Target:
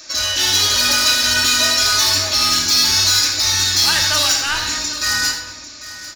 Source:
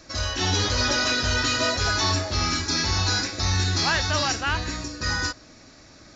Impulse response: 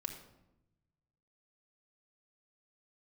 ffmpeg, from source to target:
-filter_complex "[0:a]asplit=2[s0][s1];[s1]highpass=f=720:p=1,volume=4.47,asoftclip=type=tanh:threshold=0.224[s2];[s0][s2]amix=inputs=2:normalize=0,lowpass=f=6300:p=1,volume=0.501,aecho=1:1:85|796:0.316|0.178,crystalizer=i=6.5:c=0[s3];[1:a]atrim=start_sample=2205[s4];[s3][s4]afir=irnorm=-1:irlink=0,volume=0.631"

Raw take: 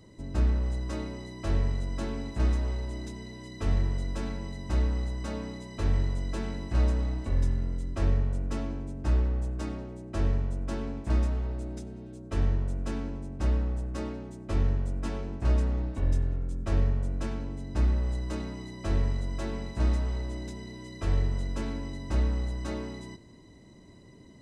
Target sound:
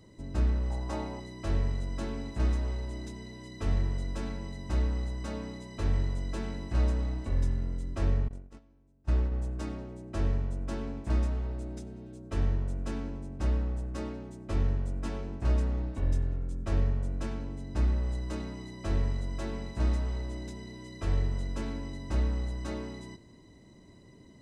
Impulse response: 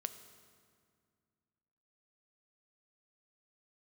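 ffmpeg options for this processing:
-filter_complex "[0:a]asettb=1/sr,asplit=3[s0][s1][s2];[s0]atrim=end=0.704[s3];[s1]atrim=start=0.7:end=1.2,asetpts=PTS-STARTPTS,afade=t=in:d=0.004:c=qsin,afade=t=out:st=0.496:d=0.004:c=qsin,equalizer=f=810:t=o:w=0.64:g=12.5[s4];[s2]atrim=start=1.196[s5];[s3][s4]acrossfade=d=0.004:c1=hsin:c2=qsin[s6];[s6][s5]acrossfade=d=0.004:c1=qsin:c2=hsin,asettb=1/sr,asplit=3[s7][s8][s9];[s7]atrim=end=8.284[s10];[s8]atrim=start=8.28:end=9.32,asetpts=PTS-STARTPTS,afade=t=in:d=0.004:c=qsin,afade=t=out:st=1.036:d=0.004:c=qsin,agate=range=0.0447:threshold=0.0501:ratio=16:detection=peak[s11];[s9]atrim=start=9.316[s12];[s10][s11]acrossfade=d=0.004:c1=hsin:c2=qsin[s13];[s13][s12]acrossfade=d=0.004:c1=qsin:c2=hsin,volume=0.794"

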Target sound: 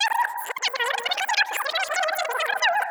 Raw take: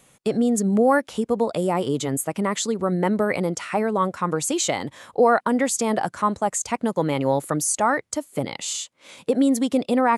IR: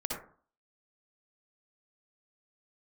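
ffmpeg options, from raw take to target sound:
-filter_complex "[0:a]areverse,asetrate=154350,aresample=44100,asplit=2[s0][s1];[s1]lowpass=f=1700:p=1[s2];[1:a]atrim=start_sample=2205,lowpass=2400,adelay=112[s3];[s2][s3]afir=irnorm=-1:irlink=0,volume=0.299[s4];[s0][s4]amix=inputs=2:normalize=0,volume=0.75"

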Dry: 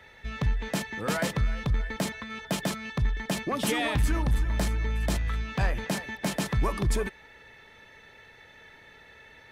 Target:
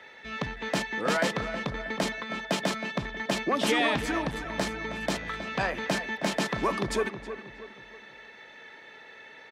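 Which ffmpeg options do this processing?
-filter_complex "[0:a]acrossover=split=190 7000:gain=0.0794 1 0.224[s0][s1][s2];[s0][s1][s2]amix=inputs=3:normalize=0,asplit=2[s3][s4];[s4]adelay=318,lowpass=f=1800:p=1,volume=0.316,asplit=2[s5][s6];[s6]adelay=318,lowpass=f=1800:p=1,volume=0.44,asplit=2[s7][s8];[s8]adelay=318,lowpass=f=1800:p=1,volume=0.44,asplit=2[s9][s10];[s10]adelay=318,lowpass=f=1800:p=1,volume=0.44,asplit=2[s11][s12];[s12]adelay=318,lowpass=f=1800:p=1,volume=0.44[s13];[s3][s5][s7][s9][s11][s13]amix=inputs=6:normalize=0,volume=1.5"

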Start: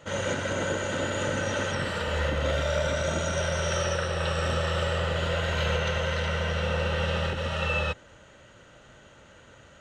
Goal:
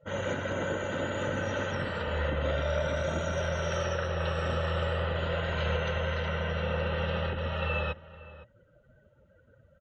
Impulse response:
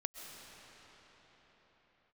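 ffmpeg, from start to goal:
-filter_complex "[0:a]afftdn=nr=22:nf=-45,lowpass=f=2800:p=1,asplit=2[s0][s1];[s1]adelay=513.1,volume=0.141,highshelf=f=4000:g=-11.5[s2];[s0][s2]amix=inputs=2:normalize=0,volume=0.75"

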